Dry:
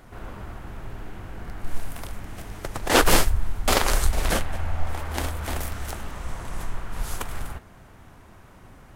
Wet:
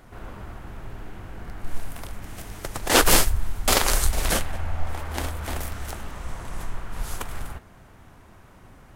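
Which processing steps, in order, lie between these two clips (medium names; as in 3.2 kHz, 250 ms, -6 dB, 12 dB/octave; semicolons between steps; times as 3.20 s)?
2.22–4.52 s: treble shelf 3.7 kHz +6.5 dB; trim -1 dB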